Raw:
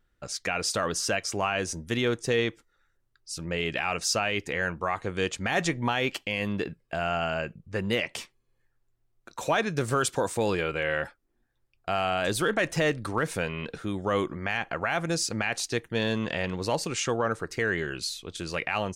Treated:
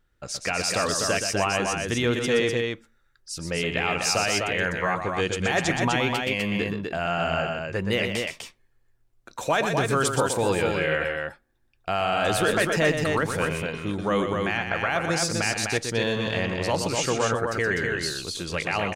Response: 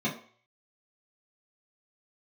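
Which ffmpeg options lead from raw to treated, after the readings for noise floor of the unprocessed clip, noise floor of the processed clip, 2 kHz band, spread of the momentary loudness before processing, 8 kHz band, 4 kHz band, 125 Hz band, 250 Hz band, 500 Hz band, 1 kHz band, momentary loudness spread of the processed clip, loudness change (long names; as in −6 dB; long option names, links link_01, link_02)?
−72 dBFS, −65 dBFS, +4.0 dB, 7 LU, +4.0 dB, +4.0 dB, +4.0 dB, +3.5 dB, +4.0 dB, +4.0 dB, 7 LU, +4.0 dB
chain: -filter_complex "[0:a]aecho=1:1:122.4|250.7:0.447|0.631,asplit=2[link_01][link_02];[1:a]atrim=start_sample=2205[link_03];[link_02][link_03]afir=irnorm=-1:irlink=0,volume=-31dB[link_04];[link_01][link_04]amix=inputs=2:normalize=0,volume=2dB"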